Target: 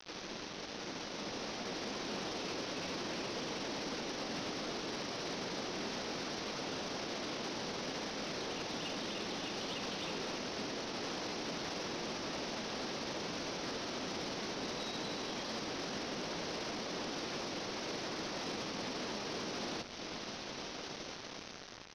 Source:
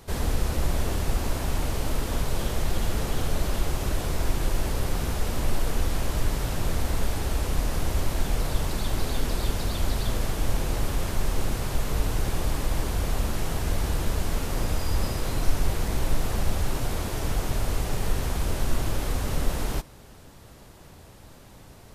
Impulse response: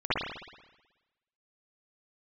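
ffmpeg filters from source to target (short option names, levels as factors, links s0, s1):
-filter_complex "[0:a]highpass=f=250:w=0.5412,highpass=f=250:w=1.3066,aemphasis=mode=production:type=75fm,afftfilt=real='re*gte(hypot(re,im),0.000891)':imag='im*gte(hypot(re,im),0.000891)':win_size=1024:overlap=0.75,highshelf=f=2000:g=-8,bandreject=f=60:t=h:w=6,bandreject=f=120:t=h:w=6,bandreject=f=180:t=h:w=6,bandreject=f=240:t=h:w=6,bandreject=f=300:t=h:w=6,bandreject=f=360:t=h:w=6,bandreject=f=420:t=h:w=6,bandreject=f=480:t=h:w=6,bandreject=f=540:t=h:w=6,acompressor=threshold=0.00891:ratio=16,alimiter=level_in=4.73:limit=0.0631:level=0:latency=1:release=86,volume=0.211,dynaudnorm=f=390:g=7:m=1.88,aresample=16000,acrusher=bits=7:mix=0:aa=0.000001,aresample=44100,asetrate=35002,aresample=44100,atempo=1.25992,asoftclip=type=tanh:threshold=0.0158,asplit=2[s0][s1];[s1]asplit=4[s2][s3][s4][s5];[s2]adelay=82,afreqshift=-82,volume=0.237[s6];[s3]adelay=164,afreqshift=-164,volume=0.0944[s7];[s4]adelay=246,afreqshift=-246,volume=0.038[s8];[s5]adelay=328,afreqshift=-328,volume=0.0151[s9];[s6][s7][s8][s9]amix=inputs=4:normalize=0[s10];[s0][s10]amix=inputs=2:normalize=0,volume=1.78"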